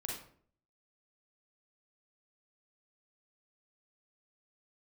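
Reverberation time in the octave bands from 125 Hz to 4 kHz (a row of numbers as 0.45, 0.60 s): 0.70, 0.65, 0.60, 0.50, 0.45, 0.35 s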